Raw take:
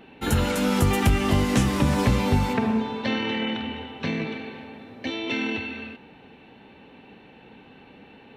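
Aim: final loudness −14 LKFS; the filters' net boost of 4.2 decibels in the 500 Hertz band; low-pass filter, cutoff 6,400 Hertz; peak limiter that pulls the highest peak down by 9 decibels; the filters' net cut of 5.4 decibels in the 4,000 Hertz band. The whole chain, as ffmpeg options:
ffmpeg -i in.wav -af "lowpass=6400,equalizer=frequency=500:width_type=o:gain=5,equalizer=frequency=4000:width_type=o:gain=-7.5,volume=13dB,alimiter=limit=-3.5dB:level=0:latency=1" out.wav

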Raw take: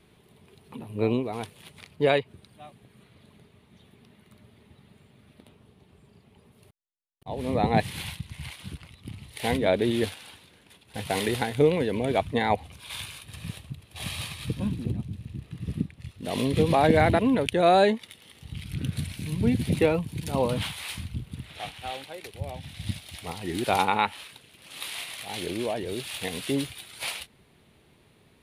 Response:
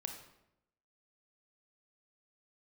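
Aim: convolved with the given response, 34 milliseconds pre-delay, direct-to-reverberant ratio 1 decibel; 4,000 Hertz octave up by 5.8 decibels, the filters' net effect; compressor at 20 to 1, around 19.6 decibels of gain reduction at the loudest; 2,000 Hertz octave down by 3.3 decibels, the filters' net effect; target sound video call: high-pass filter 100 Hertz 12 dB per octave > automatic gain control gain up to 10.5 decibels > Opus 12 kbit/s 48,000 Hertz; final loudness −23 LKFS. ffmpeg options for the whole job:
-filter_complex "[0:a]equalizer=frequency=2000:width_type=o:gain=-7,equalizer=frequency=4000:width_type=o:gain=9,acompressor=threshold=-34dB:ratio=20,asplit=2[link_01][link_02];[1:a]atrim=start_sample=2205,adelay=34[link_03];[link_02][link_03]afir=irnorm=-1:irlink=0,volume=0.5dB[link_04];[link_01][link_04]amix=inputs=2:normalize=0,highpass=100,dynaudnorm=maxgain=10.5dB,volume=7dB" -ar 48000 -c:a libopus -b:a 12k

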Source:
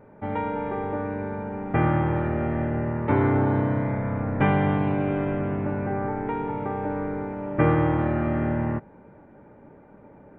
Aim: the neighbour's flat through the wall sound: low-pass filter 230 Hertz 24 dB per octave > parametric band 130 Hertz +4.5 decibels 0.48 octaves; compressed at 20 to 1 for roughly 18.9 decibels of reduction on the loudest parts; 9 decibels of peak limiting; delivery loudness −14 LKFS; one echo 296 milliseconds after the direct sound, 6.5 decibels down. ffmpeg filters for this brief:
ffmpeg -i in.wav -af "acompressor=threshold=-35dB:ratio=20,alimiter=level_in=9.5dB:limit=-24dB:level=0:latency=1,volume=-9.5dB,lowpass=frequency=230:width=0.5412,lowpass=frequency=230:width=1.3066,equalizer=frequency=130:width_type=o:width=0.48:gain=4.5,aecho=1:1:296:0.473,volume=29.5dB" out.wav

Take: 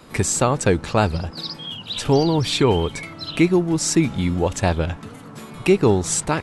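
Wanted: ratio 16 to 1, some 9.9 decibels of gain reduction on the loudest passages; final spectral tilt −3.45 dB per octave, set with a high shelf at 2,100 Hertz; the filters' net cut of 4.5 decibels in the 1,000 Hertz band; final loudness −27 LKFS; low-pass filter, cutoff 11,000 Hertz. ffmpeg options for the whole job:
ffmpeg -i in.wav -af "lowpass=11000,equalizer=frequency=1000:width_type=o:gain=-7.5,highshelf=frequency=2100:gain=6.5,acompressor=threshold=-21dB:ratio=16,volume=-1dB" out.wav

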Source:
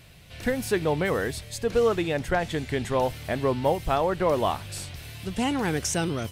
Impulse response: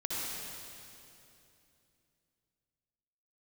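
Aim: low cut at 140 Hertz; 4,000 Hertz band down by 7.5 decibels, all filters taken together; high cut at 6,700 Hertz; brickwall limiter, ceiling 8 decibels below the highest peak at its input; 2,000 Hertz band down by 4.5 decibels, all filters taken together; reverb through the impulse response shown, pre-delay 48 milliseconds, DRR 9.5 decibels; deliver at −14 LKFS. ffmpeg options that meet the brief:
-filter_complex "[0:a]highpass=140,lowpass=6700,equalizer=frequency=2000:width_type=o:gain=-4,equalizer=frequency=4000:width_type=o:gain=-8.5,alimiter=limit=-20dB:level=0:latency=1,asplit=2[link_01][link_02];[1:a]atrim=start_sample=2205,adelay=48[link_03];[link_02][link_03]afir=irnorm=-1:irlink=0,volume=-14.5dB[link_04];[link_01][link_04]amix=inputs=2:normalize=0,volume=16.5dB"

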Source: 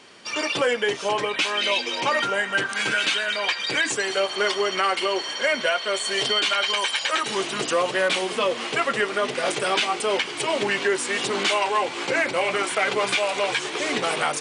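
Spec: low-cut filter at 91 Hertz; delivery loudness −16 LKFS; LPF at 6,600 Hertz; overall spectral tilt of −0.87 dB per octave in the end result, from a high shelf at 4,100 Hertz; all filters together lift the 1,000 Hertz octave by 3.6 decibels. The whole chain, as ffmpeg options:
ffmpeg -i in.wav -af "highpass=91,lowpass=6600,equalizer=frequency=1000:width_type=o:gain=4,highshelf=frequency=4100:gain=8,volume=4.5dB" out.wav

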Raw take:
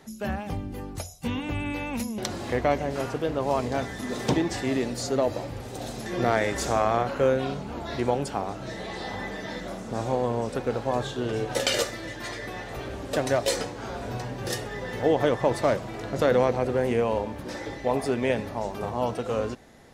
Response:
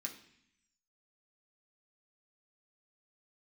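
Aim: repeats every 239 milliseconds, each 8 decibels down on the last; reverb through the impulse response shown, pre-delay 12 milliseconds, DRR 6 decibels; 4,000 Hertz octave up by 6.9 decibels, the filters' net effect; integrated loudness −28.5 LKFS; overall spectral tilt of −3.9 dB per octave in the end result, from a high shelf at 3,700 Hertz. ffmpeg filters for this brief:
-filter_complex "[0:a]highshelf=frequency=3700:gain=8,equalizer=frequency=4000:width_type=o:gain=3.5,aecho=1:1:239|478|717|956|1195:0.398|0.159|0.0637|0.0255|0.0102,asplit=2[link_01][link_02];[1:a]atrim=start_sample=2205,adelay=12[link_03];[link_02][link_03]afir=irnorm=-1:irlink=0,volume=-4dB[link_04];[link_01][link_04]amix=inputs=2:normalize=0,volume=-3.5dB"

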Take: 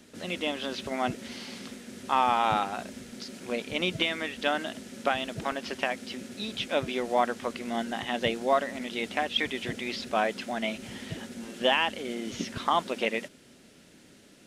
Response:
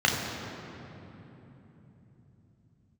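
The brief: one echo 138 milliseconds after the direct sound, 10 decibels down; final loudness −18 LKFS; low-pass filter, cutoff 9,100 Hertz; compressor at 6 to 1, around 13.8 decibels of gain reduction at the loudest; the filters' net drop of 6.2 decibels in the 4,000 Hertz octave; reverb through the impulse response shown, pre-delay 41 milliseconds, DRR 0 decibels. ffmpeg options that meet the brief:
-filter_complex "[0:a]lowpass=9100,equalizer=frequency=4000:width_type=o:gain=-9,acompressor=threshold=-35dB:ratio=6,aecho=1:1:138:0.316,asplit=2[link_01][link_02];[1:a]atrim=start_sample=2205,adelay=41[link_03];[link_02][link_03]afir=irnorm=-1:irlink=0,volume=-16dB[link_04];[link_01][link_04]amix=inputs=2:normalize=0,volume=18dB"

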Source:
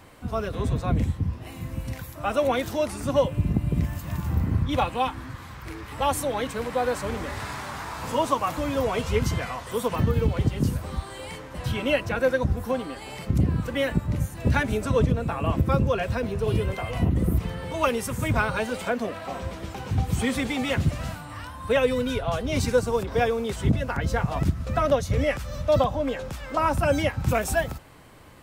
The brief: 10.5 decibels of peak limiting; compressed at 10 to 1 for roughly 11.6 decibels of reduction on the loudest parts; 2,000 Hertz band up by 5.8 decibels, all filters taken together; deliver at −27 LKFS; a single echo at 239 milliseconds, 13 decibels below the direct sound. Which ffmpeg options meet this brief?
ffmpeg -i in.wav -af "equalizer=frequency=2000:width_type=o:gain=7.5,acompressor=threshold=-28dB:ratio=10,alimiter=level_in=4.5dB:limit=-24dB:level=0:latency=1,volume=-4.5dB,aecho=1:1:239:0.224,volume=10dB" out.wav

